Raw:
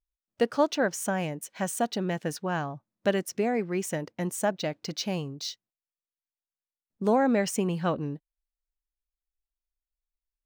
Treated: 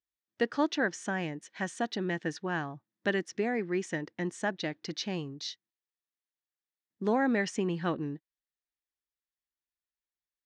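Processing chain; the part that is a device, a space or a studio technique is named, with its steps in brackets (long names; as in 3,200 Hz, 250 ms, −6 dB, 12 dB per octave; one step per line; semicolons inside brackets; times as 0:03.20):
car door speaker (loudspeaker in its box 95–6,700 Hz, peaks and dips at 330 Hz +7 dB, 590 Hz −5 dB, 1,800 Hz +9 dB, 3,500 Hz +4 dB)
level −4.5 dB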